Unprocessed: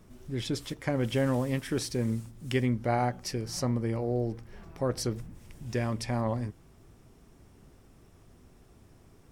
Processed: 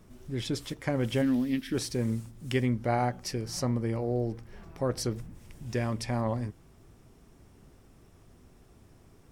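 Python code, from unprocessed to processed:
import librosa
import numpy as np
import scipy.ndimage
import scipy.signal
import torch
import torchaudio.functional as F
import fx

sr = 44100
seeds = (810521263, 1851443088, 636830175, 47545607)

y = fx.graphic_eq(x, sr, hz=(125, 250, 500, 1000, 4000, 8000), db=(-12, 11, -12, -11, 5, -11), at=(1.21, 1.73), fade=0.02)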